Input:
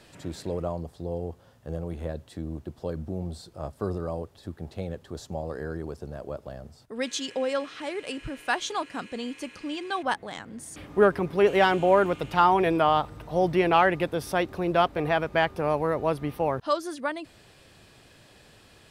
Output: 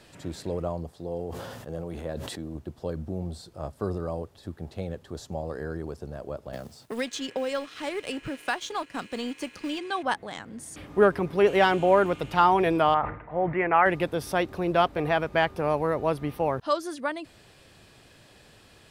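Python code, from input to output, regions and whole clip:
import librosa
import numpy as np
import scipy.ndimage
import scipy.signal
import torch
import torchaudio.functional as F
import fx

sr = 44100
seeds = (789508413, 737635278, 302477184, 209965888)

y = fx.chain(x, sr, fx.highpass(hz=170.0, slope=6),
    fx.sustainer(db_per_s=27.0), at=(0.91, 2.55))
y = fx.chain(y, sr, fx.law_mismatch(coded='A'),
    fx.band_squash(depth_pct=70), at=(6.53, 9.79))
y = fx.chain(y, sr, fx.cheby1_lowpass(hz=2100.0, order=4),
    fx.tilt_shelf(db=-6.0, hz=910.0),
    fx.sustainer(db_per_s=100.0), at=(12.94, 13.86))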